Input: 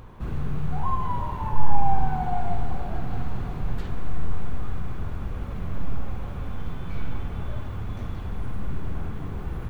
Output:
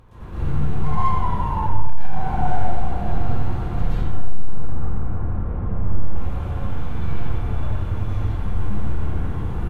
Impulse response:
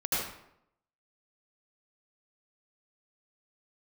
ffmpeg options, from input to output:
-filter_complex "[0:a]asettb=1/sr,asplit=3[a][b][c];[a]atrim=end=3.894[d];[b]atrim=start=3.89:end=6.03,asetpts=PTS-STARTPTS,afade=t=in:d=0.004:c=qsin,afade=t=out:st=2.136:d=0.004:c=qsin,lowpass=1.4k[e];[c]atrim=start=6.026[f];[d][e]acrossfade=d=0.004:c1=hsin:c2=qsin[g];[g][f]acrossfade=d=0.004:c1=qsin:c2=hsin,asoftclip=type=hard:threshold=-17dB,asplit=2[h][i];[i]adelay=87.46,volume=-8dB,highshelf=f=4k:g=-1.97[j];[h][j]amix=inputs=2:normalize=0[k];[1:a]atrim=start_sample=2205,asetrate=28224,aresample=44100[l];[k][l]afir=irnorm=-1:irlink=0,volume=-7.5dB"

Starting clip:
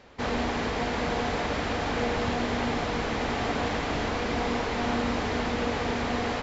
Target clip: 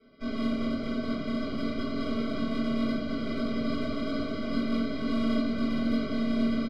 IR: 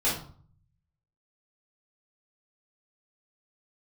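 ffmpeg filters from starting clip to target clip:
-filter_complex "[0:a]areverse,acompressor=mode=upward:threshold=-33dB:ratio=2.5,areverse,asplit=3[a][b][c];[a]bandpass=f=270:t=q:w=8,volume=0dB[d];[b]bandpass=f=2.29k:t=q:w=8,volume=-6dB[e];[c]bandpass=f=3.01k:t=q:w=8,volume=-9dB[f];[d][e][f]amix=inputs=3:normalize=0,aresample=11025,acrusher=samples=12:mix=1:aa=0.000001,aresample=44100,aeval=exprs='0.0501*(cos(1*acos(clip(val(0)/0.0501,-1,1)))-cos(1*PI/2))+0.00316*(cos(6*acos(clip(val(0)/0.0501,-1,1)))-cos(6*PI/2))':c=same[g];[1:a]atrim=start_sample=2205,asetrate=41454,aresample=44100[h];[g][h]afir=irnorm=-1:irlink=0,asetrate=42336,aresample=44100,aecho=1:1:1173:0.422,volume=-6dB"

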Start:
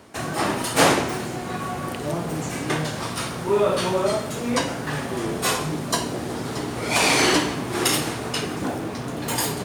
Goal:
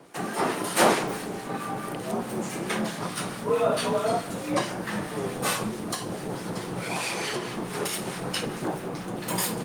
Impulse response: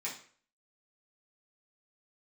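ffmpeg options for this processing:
-filter_complex "[0:a]asubboost=boost=3.5:cutoff=93,asplit=3[a][b][c];[a]afade=t=out:st=5.67:d=0.02[d];[b]acompressor=threshold=-23dB:ratio=8,afade=t=in:st=5.67:d=0.02,afade=t=out:st=8.13:d=0.02[e];[c]afade=t=in:st=8.13:d=0.02[f];[d][e][f]amix=inputs=3:normalize=0,acrossover=split=1200[g][h];[g]aeval=exprs='val(0)*(1-0.5/2+0.5/2*cos(2*PI*4.6*n/s))':c=same[i];[h]aeval=exprs='val(0)*(1-0.5/2-0.5/2*cos(2*PI*4.6*n/s))':c=same[j];[i][j]amix=inputs=2:normalize=0,afreqshift=60" -ar 48000 -c:a libopus -b:a 32k

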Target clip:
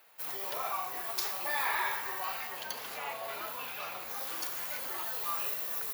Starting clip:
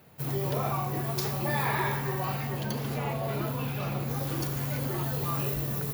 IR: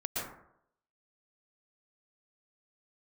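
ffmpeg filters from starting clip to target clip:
-af "highpass=930"

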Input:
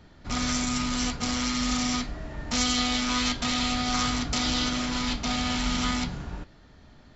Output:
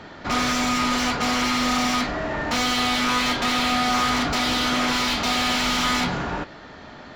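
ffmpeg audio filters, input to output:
-filter_complex "[0:a]asettb=1/sr,asplit=3[a][b][c];[a]atrim=end=4.884[d];[b]atrim=start=4.88:end=6.01,asetpts=PTS-STARTPTS,afade=t=in:d=0.004:c=qsin,afade=t=out:st=1.126:d=0.004:c=qsin,highshelf=f=2.6k:g=7.5[e];[c]atrim=start=6.006[f];[d][e]acrossfade=d=0.004:c1=hsin:c2=qsin[g];[g][f]acrossfade=d=0.004:c1=qsin:c2=hsin,asplit=2[h][i];[i]highpass=f=720:p=1,volume=27dB,asoftclip=type=tanh:threshold=-11dB[j];[h][j]amix=inputs=2:normalize=0,lowpass=f=1.7k:p=1,volume=-6dB"

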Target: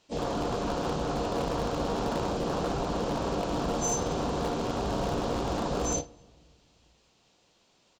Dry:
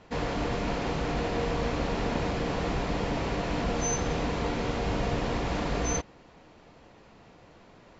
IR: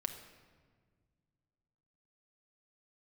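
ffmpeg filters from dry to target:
-filter_complex "[0:a]afwtdn=0.0316,lowshelf=f=150:g=-8,aecho=1:1:35|48:0.211|0.168,asplit=2[a][b];[1:a]atrim=start_sample=2205[c];[b][c]afir=irnorm=-1:irlink=0,volume=-11.5dB[d];[a][d]amix=inputs=2:normalize=0,asplit=2[e][f];[f]asetrate=52444,aresample=44100,atempo=0.840896,volume=-10dB[g];[e][g]amix=inputs=2:normalize=0,asoftclip=type=hard:threshold=-23dB,aexciter=amount=4.8:drive=5.2:freq=2.8k" -ar 48000 -c:a libopus -b:a 256k

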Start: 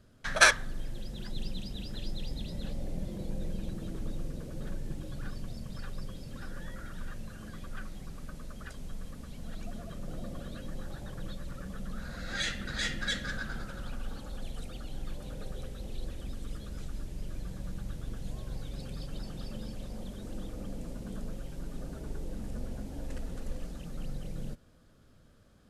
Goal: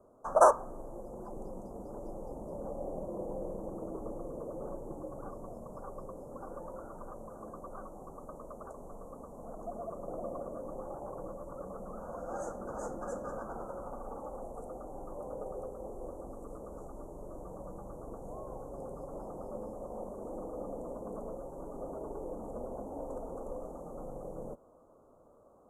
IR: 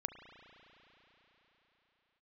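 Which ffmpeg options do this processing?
-filter_complex "[0:a]asuperstop=centerf=2800:order=12:qfactor=0.51,acrossover=split=380 2200:gain=0.0708 1 0.112[a][b][c];[a][b][c]amix=inputs=3:normalize=0,volume=11dB"

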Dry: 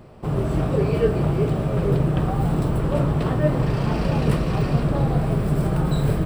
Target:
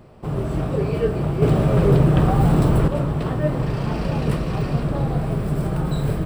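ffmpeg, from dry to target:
-filter_complex "[0:a]asettb=1/sr,asplit=3[a][b][c];[a]atrim=end=1.424[d];[b]atrim=start=1.42:end=2.88,asetpts=PTS-STARTPTS,afade=t=in:d=0.004:c=qsin,afade=t=out:st=1.456:d=0.004:c=qsin,acontrast=88[e];[c]atrim=start=2.876[f];[d][e]acrossfade=d=0.004:c1=hsin:c2=qsin[g];[g][f]acrossfade=d=0.004:c1=qsin:c2=hsin,volume=-1.5dB"

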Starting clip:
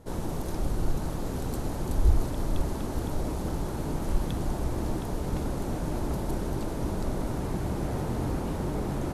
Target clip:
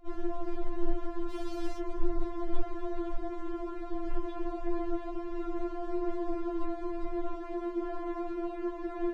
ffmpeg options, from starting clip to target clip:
-filter_complex "[0:a]lowpass=2.1k,asplit=3[a][b][c];[a]afade=t=out:st=1.29:d=0.02[d];[b]acrusher=bits=6:mix=0:aa=0.5,afade=t=in:st=1.29:d=0.02,afade=t=out:st=1.78:d=0.02[e];[c]afade=t=in:st=1.78:d=0.02[f];[d][e][f]amix=inputs=3:normalize=0,asettb=1/sr,asplit=3[g][h][i];[g]atrim=end=5.764[j];[h]atrim=start=5.76:end=6.31,asetpts=PTS-STARTPTS,afade=t=in:d=0.004:c=qsin,afade=t=out:st=0.546:d=0.004:c=qsin,asplit=2[k][l];[l]adelay=23,volume=-6dB[m];[k][m]amix=inputs=2:normalize=0,atrim=end_sample=24255[n];[i]atrim=start=6.306[o];[j][n]acrossfade=d=0.004:c1=hsin:c2=qsin[p];[p][o]acrossfade=d=0.004:c1=qsin:c2=hsin,afftfilt=real='re*4*eq(mod(b,16),0)':imag='im*4*eq(mod(b,16),0)':win_size=2048:overlap=0.75"

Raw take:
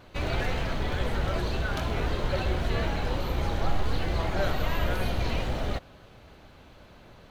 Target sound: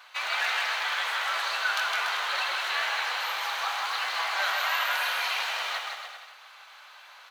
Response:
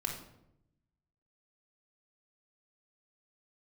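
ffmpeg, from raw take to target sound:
-filter_complex "[0:a]highpass=f=980:w=0.5412,highpass=f=980:w=1.3066,aecho=1:1:160|288|390.4|472.3|537.9:0.631|0.398|0.251|0.158|0.1,asplit=2[a][b];[1:a]atrim=start_sample=2205,lowpass=8.2k[c];[b][c]afir=irnorm=-1:irlink=0,volume=-13.5dB[d];[a][d]amix=inputs=2:normalize=0,volume=5.5dB"

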